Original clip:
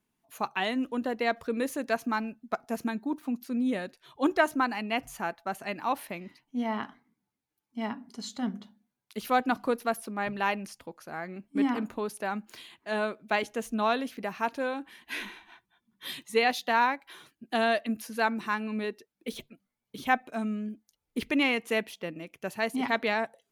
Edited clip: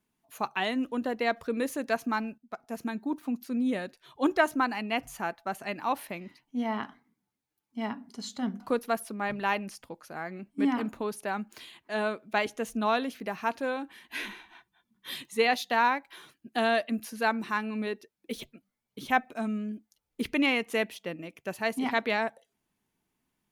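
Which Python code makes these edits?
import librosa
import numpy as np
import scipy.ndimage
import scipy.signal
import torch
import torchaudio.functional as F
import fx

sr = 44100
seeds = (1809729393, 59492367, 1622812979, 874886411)

y = fx.edit(x, sr, fx.fade_in_from(start_s=2.38, length_s=0.7, floor_db=-13.5),
    fx.cut(start_s=8.6, length_s=0.97), tone=tone)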